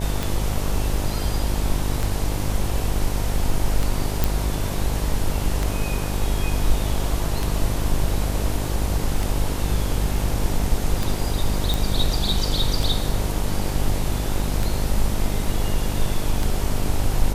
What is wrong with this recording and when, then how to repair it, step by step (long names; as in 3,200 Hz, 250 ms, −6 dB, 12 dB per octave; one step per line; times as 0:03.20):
mains buzz 50 Hz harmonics 19 −26 dBFS
scratch tick 33 1/3 rpm
0:04.24: click
0:11.74: click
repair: click removal
hum removal 50 Hz, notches 19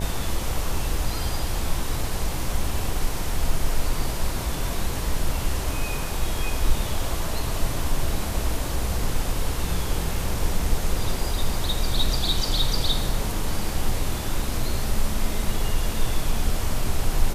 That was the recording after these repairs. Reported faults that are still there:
none of them is left